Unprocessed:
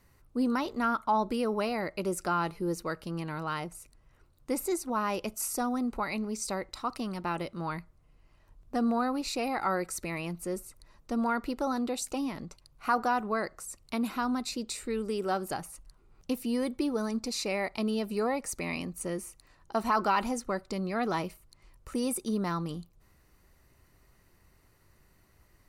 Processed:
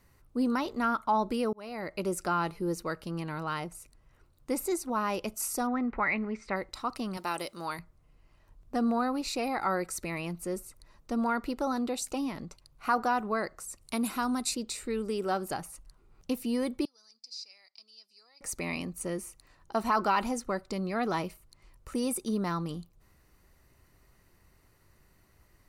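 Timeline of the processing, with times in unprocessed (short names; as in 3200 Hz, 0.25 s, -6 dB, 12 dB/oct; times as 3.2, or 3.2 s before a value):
1.53–1.99 fade in
5.67–6.56 synth low-pass 2000 Hz, resonance Q 3.6
7.17–7.79 tone controls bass -12 dB, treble +13 dB
9.41–9.81 notch 2800 Hz
13.81–14.55 bell 9500 Hz +12.5 dB 0.97 oct
16.85–18.41 band-pass 5000 Hz, Q 9.4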